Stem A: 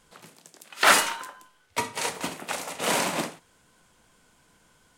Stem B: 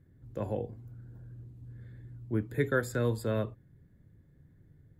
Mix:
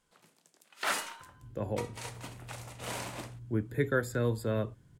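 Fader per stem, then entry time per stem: -14.0, -0.5 dB; 0.00, 1.20 s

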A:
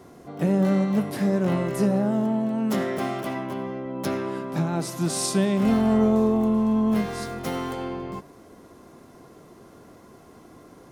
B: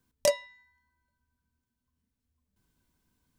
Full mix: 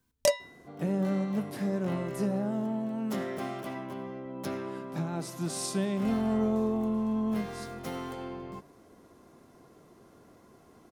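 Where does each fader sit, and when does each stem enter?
-8.0, 0.0 dB; 0.40, 0.00 s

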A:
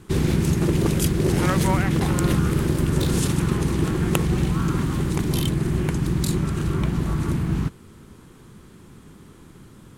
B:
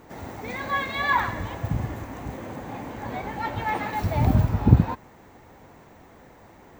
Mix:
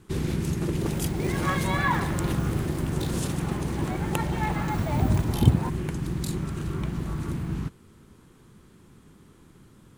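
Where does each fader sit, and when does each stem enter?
-7.0, -4.0 dB; 0.00, 0.75 s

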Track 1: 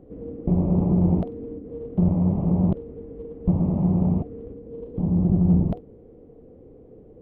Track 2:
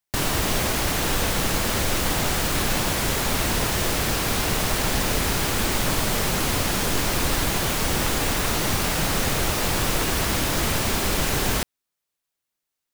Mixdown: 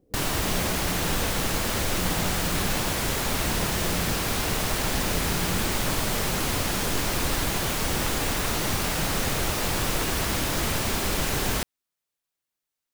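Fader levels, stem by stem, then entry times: -15.5, -3.0 dB; 0.00, 0.00 s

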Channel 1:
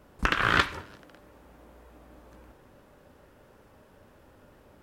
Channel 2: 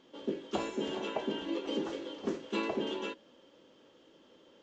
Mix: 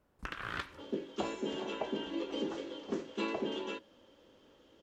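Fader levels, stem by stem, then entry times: -16.5, -2.0 dB; 0.00, 0.65 s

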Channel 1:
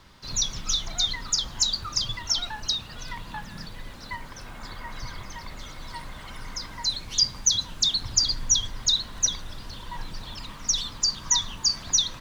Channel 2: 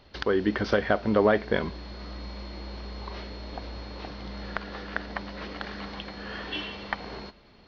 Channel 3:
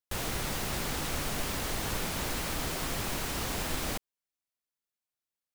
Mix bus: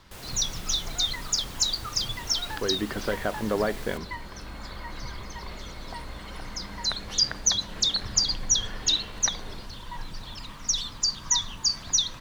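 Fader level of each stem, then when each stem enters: -1.5, -5.0, -9.0 dB; 0.00, 2.35, 0.00 s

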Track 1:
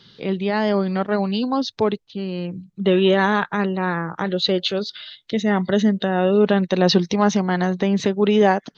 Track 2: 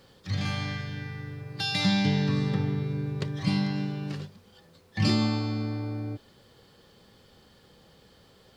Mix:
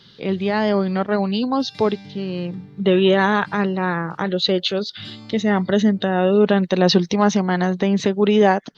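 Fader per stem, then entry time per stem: +1.0, -15.5 dB; 0.00, 0.00 s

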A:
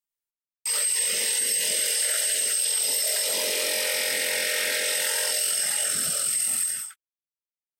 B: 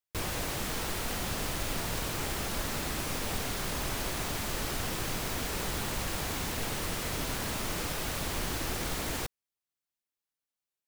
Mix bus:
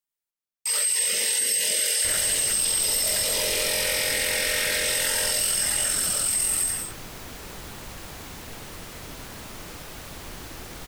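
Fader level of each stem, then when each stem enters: +1.0, -5.5 dB; 0.00, 1.90 s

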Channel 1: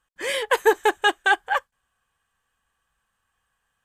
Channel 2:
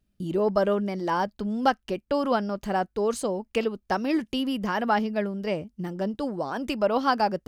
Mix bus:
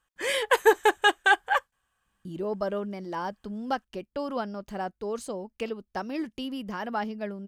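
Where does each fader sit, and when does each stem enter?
-1.5, -7.0 dB; 0.00, 2.05 s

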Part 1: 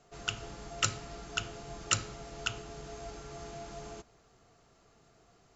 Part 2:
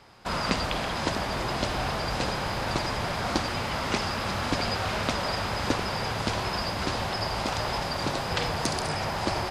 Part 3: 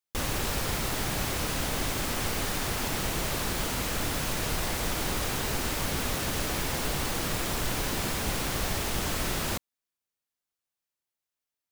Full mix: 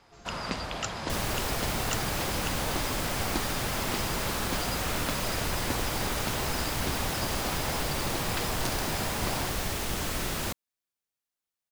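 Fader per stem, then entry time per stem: -6.0, -6.5, -1.5 dB; 0.00, 0.00, 0.95 s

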